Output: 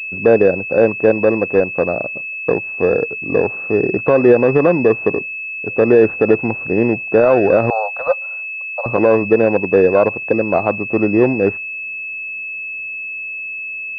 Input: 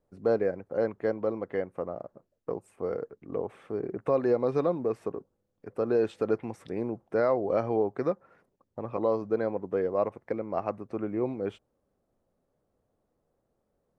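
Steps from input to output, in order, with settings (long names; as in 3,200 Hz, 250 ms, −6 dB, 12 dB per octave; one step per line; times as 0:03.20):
0:07.70–0:08.86: Butterworth high-pass 530 Hz 96 dB per octave
boost into a limiter +18 dB
switching amplifier with a slow clock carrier 2,600 Hz
level −1 dB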